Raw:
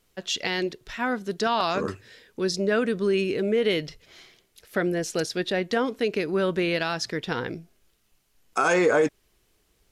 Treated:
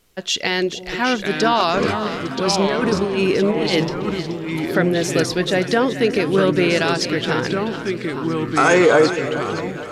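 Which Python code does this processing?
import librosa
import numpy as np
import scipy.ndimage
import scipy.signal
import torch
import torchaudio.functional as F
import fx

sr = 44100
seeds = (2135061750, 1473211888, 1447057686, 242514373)

y = fx.over_compress(x, sr, threshold_db=-25.0, ratio=-0.5, at=(1.8, 3.87))
y = fx.echo_split(y, sr, split_hz=610.0, low_ms=315, high_ms=428, feedback_pct=52, wet_db=-11.0)
y = fx.echo_pitch(y, sr, ms=711, semitones=-3, count=3, db_per_echo=-6.0)
y = y * librosa.db_to_amplitude(7.0)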